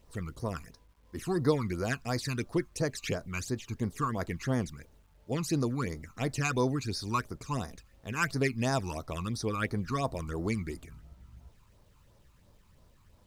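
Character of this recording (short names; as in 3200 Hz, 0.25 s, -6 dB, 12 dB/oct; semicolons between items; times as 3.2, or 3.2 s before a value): phasing stages 12, 2.9 Hz, lowest notch 550–2800 Hz; a quantiser's noise floor 12-bit, dither none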